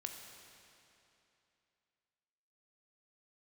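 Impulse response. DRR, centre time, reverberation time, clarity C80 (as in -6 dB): 3.0 dB, 71 ms, 2.9 s, 5.5 dB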